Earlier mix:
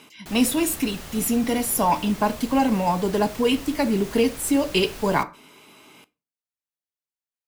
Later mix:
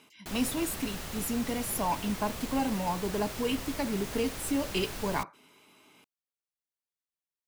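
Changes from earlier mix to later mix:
speech -9.0 dB; reverb: off

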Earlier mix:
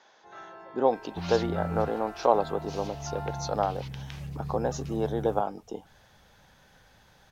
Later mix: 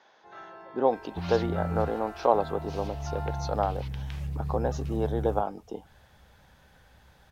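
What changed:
speech: add air absorption 100 m; second sound: add bell 67 Hz +10.5 dB 0.53 oct

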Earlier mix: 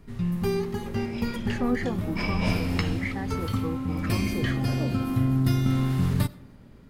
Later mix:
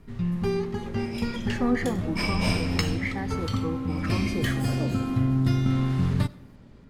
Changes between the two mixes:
speech: send on; first sound: add air absorption 57 m; second sound: remove air absorption 140 m

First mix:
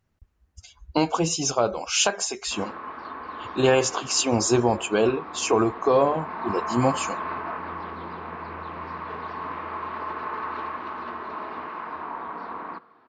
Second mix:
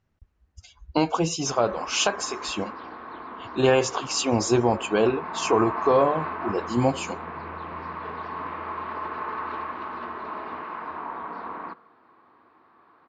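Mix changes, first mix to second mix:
background: entry -1.05 s; master: add air absorption 60 m

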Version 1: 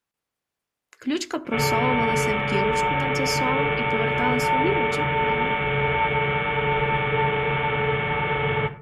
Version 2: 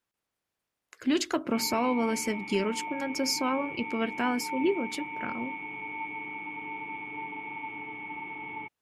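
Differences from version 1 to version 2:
background: add vowel filter u; reverb: off

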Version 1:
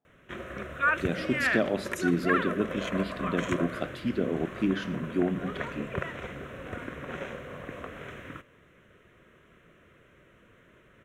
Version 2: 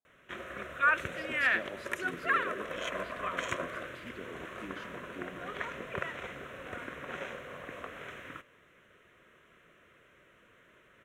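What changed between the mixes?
speech -12.0 dB; master: add low shelf 380 Hz -10.5 dB

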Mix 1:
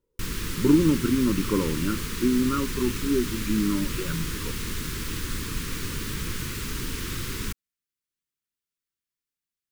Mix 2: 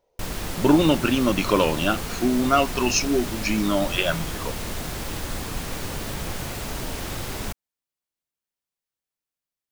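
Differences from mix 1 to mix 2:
speech: remove Bessel low-pass 740 Hz; master: remove Butterworth band-stop 690 Hz, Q 0.96

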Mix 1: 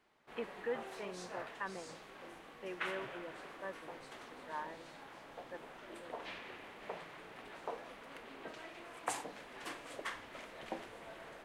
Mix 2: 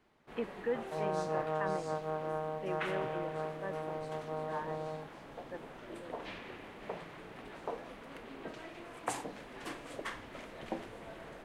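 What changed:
second sound: unmuted; master: add low shelf 390 Hz +10 dB

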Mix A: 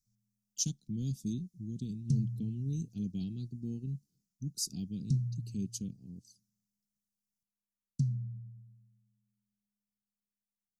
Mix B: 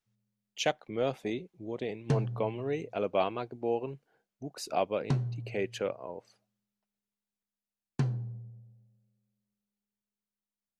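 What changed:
speech -8.5 dB; master: remove elliptic band-stop 200–5500 Hz, stop band 50 dB

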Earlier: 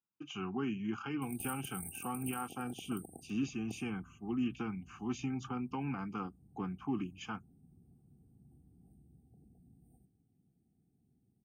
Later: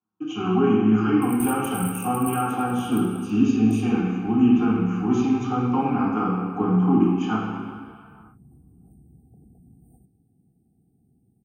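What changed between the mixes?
background +10.5 dB; reverb: on, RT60 2.1 s

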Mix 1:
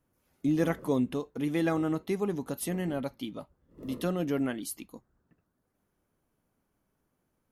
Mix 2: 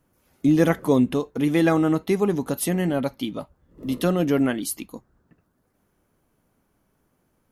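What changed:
speech +9.0 dB; background +3.0 dB

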